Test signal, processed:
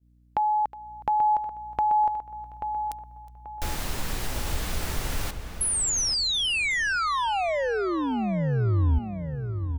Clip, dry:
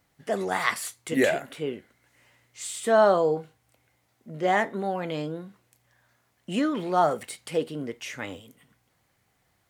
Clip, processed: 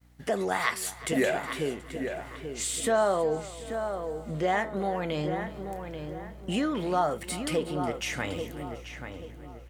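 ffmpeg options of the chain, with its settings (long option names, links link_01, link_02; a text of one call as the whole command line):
ffmpeg -i in.wav -filter_complex "[0:a]aeval=exprs='val(0)+0.00112*(sin(2*PI*60*n/s)+sin(2*PI*2*60*n/s)/2+sin(2*PI*3*60*n/s)/3+sin(2*PI*4*60*n/s)/4+sin(2*PI*5*60*n/s)/5)':channel_layout=same,acompressor=threshold=-36dB:ratio=2,asplit=2[link_01][link_02];[link_02]aecho=0:1:365|730|1095|1460:0.126|0.0667|0.0354|0.0187[link_03];[link_01][link_03]amix=inputs=2:normalize=0,agate=range=-33dB:threshold=-55dB:ratio=3:detection=peak,asubboost=boost=2:cutoff=120,asplit=2[link_04][link_05];[link_05]adelay=835,lowpass=frequency=2500:poles=1,volume=-7.5dB,asplit=2[link_06][link_07];[link_07]adelay=835,lowpass=frequency=2500:poles=1,volume=0.36,asplit=2[link_08][link_09];[link_09]adelay=835,lowpass=frequency=2500:poles=1,volume=0.36,asplit=2[link_10][link_11];[link_11]adelay=835,lowpass=frequency=2500:poles=1,volume=0.36[link_12];[link_06][link_08][link_10][link_12]amix=inputs=4:normalize=0[link_13];[link_04][link_13]amix=inputs=2:normalize=0,volume=6dB" out.wav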